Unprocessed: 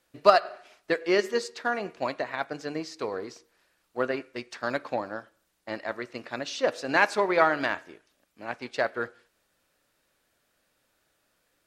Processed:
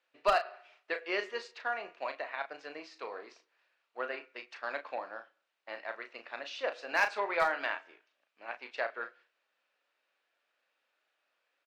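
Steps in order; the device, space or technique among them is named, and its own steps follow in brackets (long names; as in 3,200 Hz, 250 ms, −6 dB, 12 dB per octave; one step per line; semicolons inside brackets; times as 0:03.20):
megaphone (band-pass filter 600–3,600 Hz; parametric band 2,600 Hz +5 dB 0.37 octaves; hard clipping −13 dBFS, distortion −16 dB; double-tracking delay 35 ms −8.5 dB)
level −6 dB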